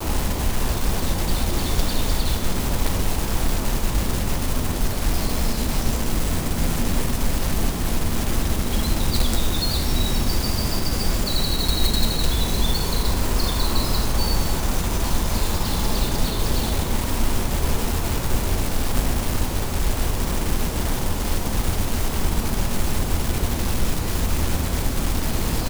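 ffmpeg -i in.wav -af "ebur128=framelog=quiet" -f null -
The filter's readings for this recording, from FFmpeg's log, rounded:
Integrated loudness:
  I:         -24.0 LUFS
  Threshold: -34.0 LUFS
Loudness range:
  LRA:         2.4 LU
  Threshold: -43.9 LUFS
  LRA low:   -24.8 LUFS
  LRA high:  -22.5 LUFS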